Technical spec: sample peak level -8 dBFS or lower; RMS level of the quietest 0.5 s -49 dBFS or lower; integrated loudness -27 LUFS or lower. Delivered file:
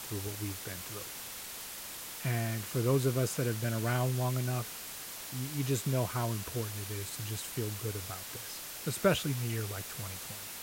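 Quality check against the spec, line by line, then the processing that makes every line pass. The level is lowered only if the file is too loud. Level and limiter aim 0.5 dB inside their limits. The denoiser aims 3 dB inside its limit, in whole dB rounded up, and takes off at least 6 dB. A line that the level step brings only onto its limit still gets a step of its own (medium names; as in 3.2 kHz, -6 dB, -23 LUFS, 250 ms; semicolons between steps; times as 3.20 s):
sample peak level -14.0 dBFS: pass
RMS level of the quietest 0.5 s -44 dBFS: fail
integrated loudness -34.5 LUFS: pass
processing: noise reduction 8 dB, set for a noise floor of -44 dBFS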